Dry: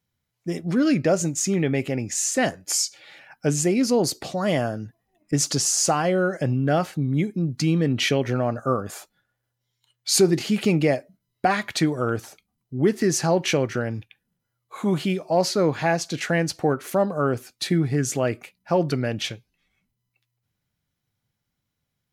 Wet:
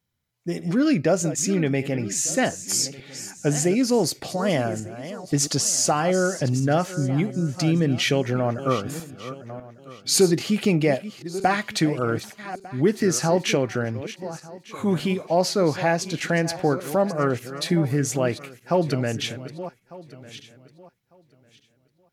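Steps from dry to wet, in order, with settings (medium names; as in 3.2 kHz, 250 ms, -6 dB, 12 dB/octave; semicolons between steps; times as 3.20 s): backward echo that repeats 600 ms, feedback 42%, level -13 dB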